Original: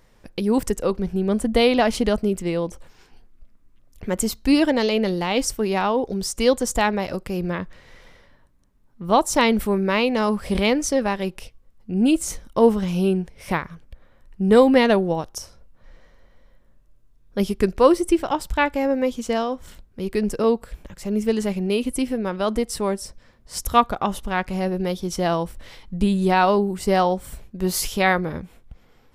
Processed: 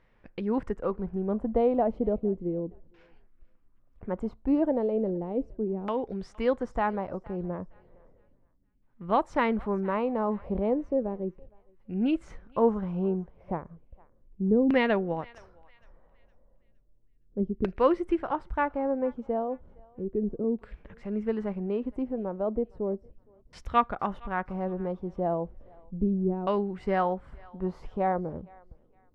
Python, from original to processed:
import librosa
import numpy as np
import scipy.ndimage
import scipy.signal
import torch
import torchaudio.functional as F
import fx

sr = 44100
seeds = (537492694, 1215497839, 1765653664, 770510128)

p1 = fx.filter_lfo_lowpass(x, sr, shape='saw_down', hz=0.34, low_hz=300.0, high_hz=2500.0, q=1.4)
p2 = p1 + fx.echo_thinned(p1, sr, ms=463, feedback_pct=35, hz=1100.0, wet_db=-21.0, dry=0)
y = F.gain(torch.from_numpy(p2), -8.5).numpy()